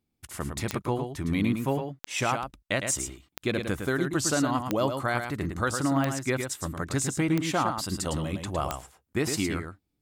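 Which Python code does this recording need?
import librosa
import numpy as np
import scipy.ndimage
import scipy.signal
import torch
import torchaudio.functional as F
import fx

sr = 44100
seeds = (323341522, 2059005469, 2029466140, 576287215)

y = fx.fix_declick_ar(x, sr, threshold=10.0)
y = fx.fix_echo_inverse(y, sr, delay_ms=109, level_db=-6.5)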